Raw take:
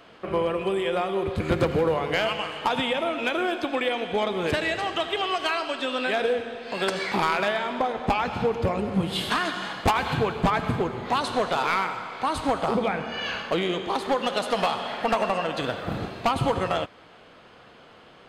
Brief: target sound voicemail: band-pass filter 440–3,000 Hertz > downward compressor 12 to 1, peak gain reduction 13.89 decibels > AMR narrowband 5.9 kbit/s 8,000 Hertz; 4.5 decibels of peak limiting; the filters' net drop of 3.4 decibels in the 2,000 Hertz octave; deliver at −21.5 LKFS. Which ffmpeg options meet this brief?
ffmpeg -i in.wav -af "equalizer=frequency=2000:width_type=o:gain=-3.5,alimiter=limit=-18.5dB:level=0:latency=1,highpass=440,lowpass=3000,acompressor=threshold=-36dB:ratio=12,volume=21dB" -ar 8000 -c:a libopencore_amrnb -b:a 5900 out.amr

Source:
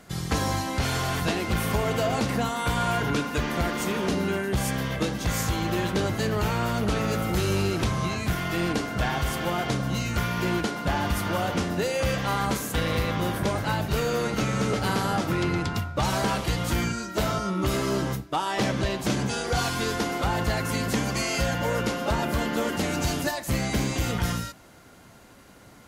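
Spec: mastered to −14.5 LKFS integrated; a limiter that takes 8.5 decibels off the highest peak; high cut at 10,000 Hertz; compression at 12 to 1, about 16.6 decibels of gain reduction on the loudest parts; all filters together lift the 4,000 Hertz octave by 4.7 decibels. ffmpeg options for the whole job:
ffmpeg -i in.wav -af "lowpass=10000,equalizer=frequency=4000:width_type=o:gain=6,acompressor=threshold=-38dB:ratio=12,volume=28.5dB,alimiter=limit=-6dB:level=0:latency=1" out.wav

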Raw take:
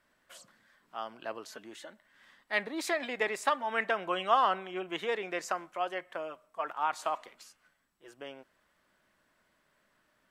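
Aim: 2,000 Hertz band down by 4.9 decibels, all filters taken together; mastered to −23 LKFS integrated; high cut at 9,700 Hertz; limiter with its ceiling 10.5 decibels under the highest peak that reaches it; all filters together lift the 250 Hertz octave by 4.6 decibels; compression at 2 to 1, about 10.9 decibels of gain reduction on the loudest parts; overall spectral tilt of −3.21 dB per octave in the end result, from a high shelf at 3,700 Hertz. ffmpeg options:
ffmpeg -i in.wav -af "lowpass=9700,equalizer=frequency=250:width_type=o:gain=7,equalizer=frequency=2000:width_type=o:gain=-4,highshelf=frequency=3700:gain=-8,acompressor=threshold=-42dB:ratio=2,volume=23dB,alimiter=limit=-11.5dB:level=0:latency=1" out.wav

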